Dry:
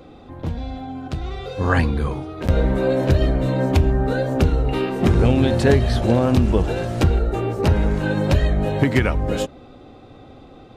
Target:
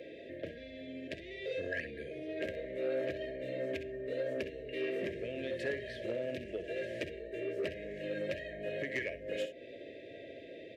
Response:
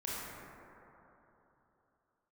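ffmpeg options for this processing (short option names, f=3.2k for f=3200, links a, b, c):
-filter_complex "[0:a]equalizer=f=250:t=o:w=1:g=-8,equalizer=f=500:t=o:w=1:g=-4,equalizer=f=4k:t=o:w=1:g=-5,acompressor=threshold=-35dB:ratio=4,acrossover=split=330 3400:gain=0.0708 1 0.126[a][b][c];[a][b][c]amix=inputs=3:normalize=0,asplit=2[d][e];[e]aecho=0:1:54|64:0.141|0.251[f];[d][f]amix=inputs=2:normalize=0,afftfilt=real='re*(1-between(b*sr/4096,680,1600))':imag='im*(1-between(b*sr/4096,680,1600))':win_size=4096:overlap=0.75,asoftclip=type=tanh:threshold=-32dB,highpass=87,volume=6.5dB"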